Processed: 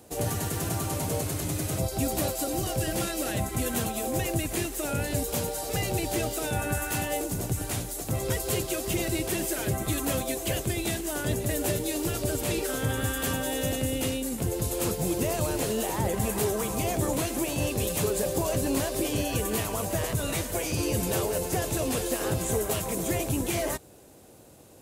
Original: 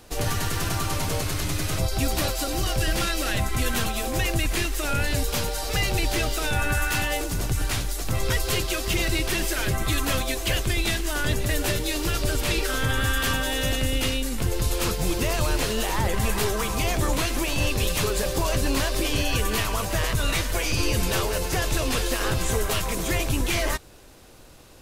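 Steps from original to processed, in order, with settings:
high-pass filter 100 Hz 12 dB per octave
flat-topped bell 2,400 Hz −8.5 dB 2.8 octaves

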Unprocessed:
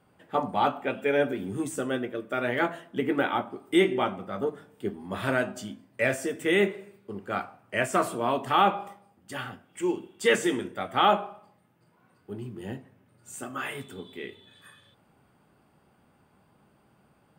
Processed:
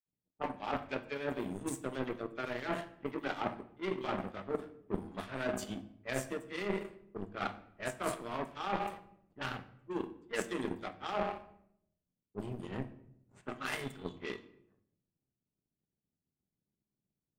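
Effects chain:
hum removal 112 Hz, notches 2
all-pass dispersion lows, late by 61 ms, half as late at 2,900 Hz
reversed playback
downward compressor 16 to 1, threshold −35 dBFS, peak gain reduction 20 dB
reversed playback
power curve on the samples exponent 2
low-pass that shuts in the quiet parts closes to 310 Hz, open at −45 dBFS
on a send: convolution reverb RT60 0.75 s, pre-delay 3 ms, DRR 10 dB
on the sum: level +9 dB

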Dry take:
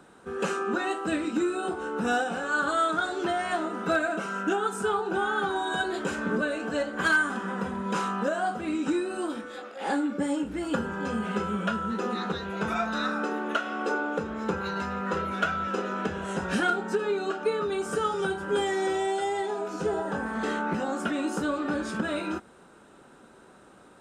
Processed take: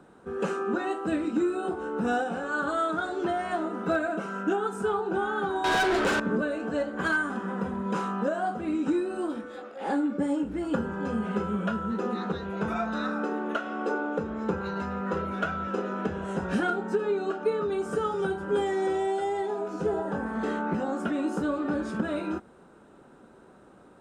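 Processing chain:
tilt shelving filter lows +5 dB, about 1,400 Hz
0:05.64–0:06.20: mid-hump overdrive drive 25 dB, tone 6,600 Hz, clips at −14 dBFS
level −3.5 dB

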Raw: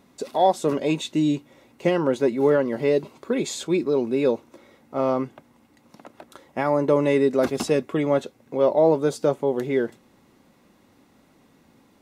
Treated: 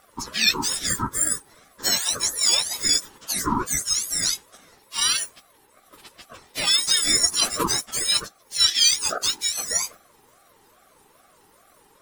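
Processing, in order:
frequency axis turned over on the octave scale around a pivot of 1,600 Hz
ring modulator whose carrier an LFO sweeps 790 Hz, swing 25%, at 2.4 Hz
level +7 dB

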